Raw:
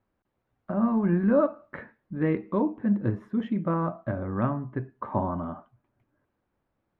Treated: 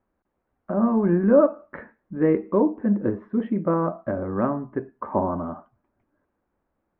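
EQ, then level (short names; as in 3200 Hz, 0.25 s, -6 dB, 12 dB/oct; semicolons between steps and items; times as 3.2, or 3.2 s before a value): LPF 1900 Hz 12 dB/oct; bell 120 Hz -12 dB 0.49 oct; dynamic EQ 440 Hz, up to +6 dB, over -40 dBFS, Q 1.5; +3.0 dB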